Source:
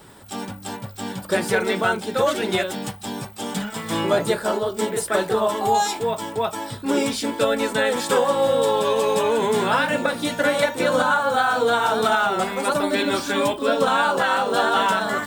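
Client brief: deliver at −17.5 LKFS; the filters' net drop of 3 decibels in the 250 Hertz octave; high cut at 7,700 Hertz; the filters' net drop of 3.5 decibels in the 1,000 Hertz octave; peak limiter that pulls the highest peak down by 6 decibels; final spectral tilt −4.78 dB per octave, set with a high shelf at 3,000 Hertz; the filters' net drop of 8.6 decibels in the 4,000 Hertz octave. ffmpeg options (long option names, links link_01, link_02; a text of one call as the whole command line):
ffmpeg -i in.wav -af "lowpass=7700,equalizer=frequency=250:width_type=o:gain=-3.5,equalizer=frequency=1000:width_type=o:gain=-3.5,highshelf=frequency=3000:gain=-4,equalizer=frequency=4000:width_type=o:gain=-7.5,volume=7.5dB,alimiter=limit=-7dB:level=0:latency=1" out.wav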